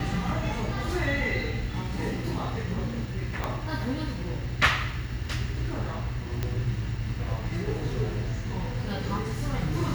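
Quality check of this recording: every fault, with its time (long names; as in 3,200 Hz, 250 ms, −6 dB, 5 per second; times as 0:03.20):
0:03.44: click −14 dBFS
0:06.43: click −15 dBFS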